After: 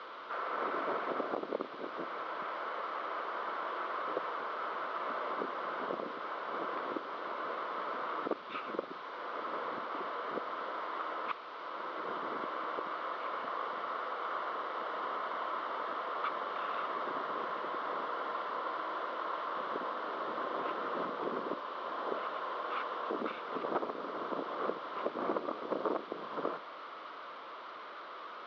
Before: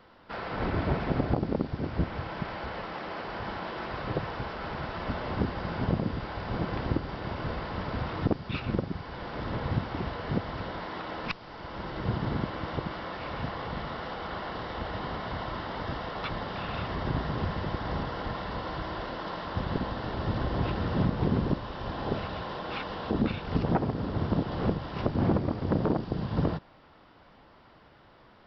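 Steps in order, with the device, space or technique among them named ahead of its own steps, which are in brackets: digital answering machine (band-pass 300–3100 Hz; one-bit delta coder 32 kbps, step -39.5 dBFS; cabinet simulation 440–3400 Hz, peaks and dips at 800 Hz -8 dB, 1.2 kHz +8 dB, 1.8 kHz -6 dB, 2.6 kHz -7 dB)

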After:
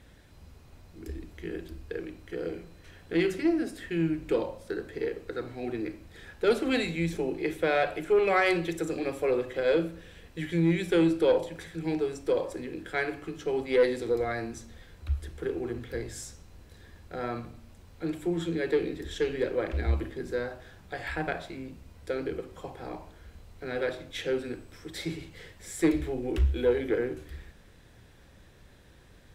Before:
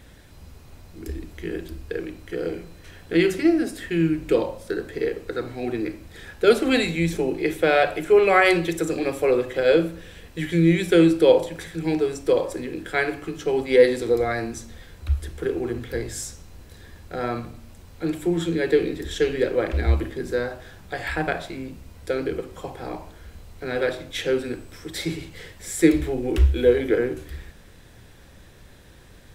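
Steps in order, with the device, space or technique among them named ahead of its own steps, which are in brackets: tube preamp driven hard (valve stage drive 8 dB, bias 0.2; treble shelf 6.9 kHz -5 dB); trim -6 dB

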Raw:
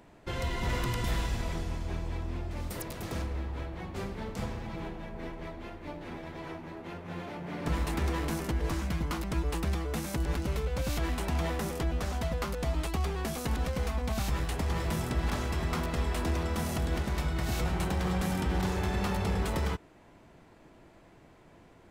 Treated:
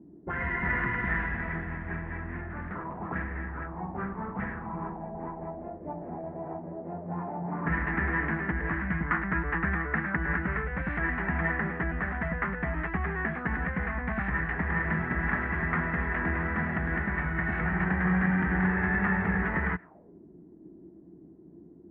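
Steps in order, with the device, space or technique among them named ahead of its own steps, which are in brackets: 9.06–10.64 s: peaking EQ 1.4 kHz +5 dB 0.99 oct; envelope filter bass rig (touch-sensitive low-pass 290–1800 Hz up, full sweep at -31 dBFS; cabinet simulation 62–2400 Hz, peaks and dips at 110 Hz -8 dB, 180 Hz +8 dB, 530 Hz -7 dB, 1.8 kHz +5 dB)

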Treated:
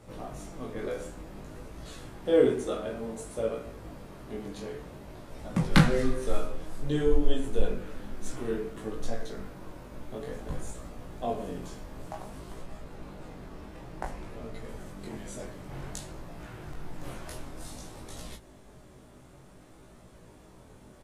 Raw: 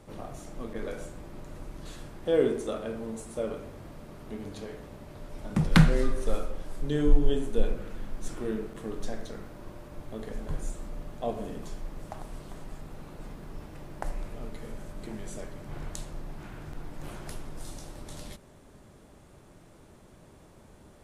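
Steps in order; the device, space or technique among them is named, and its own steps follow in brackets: 12.61–14.69 s: treble shelf 8.6 kHz -6.5 dB; double-tracked vocal (doubling 16 ms -5 dB; chorus 0.55 Hz, delay 17.5 ms, depth 6.6 ms); trim +3 dB

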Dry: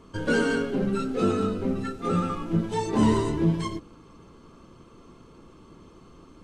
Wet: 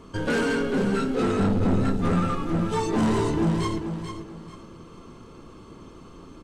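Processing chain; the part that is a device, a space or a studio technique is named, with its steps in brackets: 1.39–2.13 s: tone controls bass +15 dB, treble +2 dB; saturation between pre-emphasis and de-emphasis (treble shelf 4 kHz +6.5 dB; saturation -24 dBFS, distortion -7 dB; treble shelf 4 kHz -6.5 dB); feedback delay 439 ms, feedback 29%, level -8 dB; trim +4.5 dB

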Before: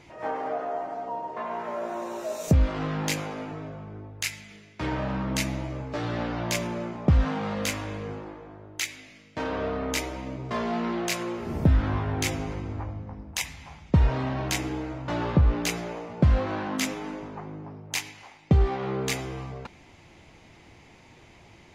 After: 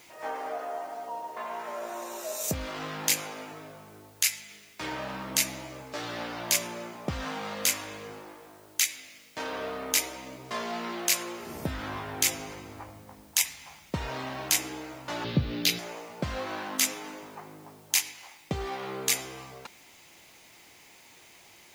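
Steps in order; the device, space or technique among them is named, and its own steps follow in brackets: turntable without a phono preamp (RIAA curve recording; white noise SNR 27 dB); 15.24–15.79 s: graphic EQ 125/250/1000/4000/8000 Hz +11/+6/-11/+10/-12 dB; trim -3 dB

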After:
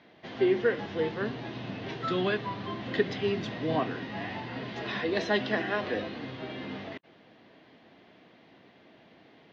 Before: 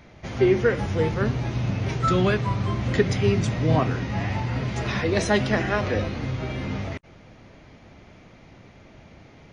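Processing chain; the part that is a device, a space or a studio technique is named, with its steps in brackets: phone earpiece (cabinet simulation 330–3900 Hz, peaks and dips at 390 Hz -3 dB, 560 Hz -7 dB, 870 Hz -6 dB, 1.3 kHz -9 dB, 2.3 kHz -9 dB)

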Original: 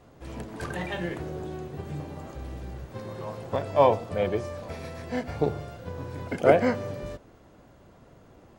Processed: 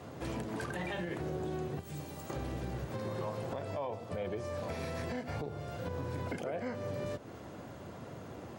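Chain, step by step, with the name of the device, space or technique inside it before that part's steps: 1.79–2.30 s: pre-emphasis filter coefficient 0.8; podcast mastering chain (high-pass 78 Hz 24 dB/octave; compression 3:1, threshold -44 dBFS, peak gain reduction 22.5 dB; peak limiter -36 dBFS, peak gain reduction 10 dB; trim +8 dB; MP3 96 kbps 48 kHz)

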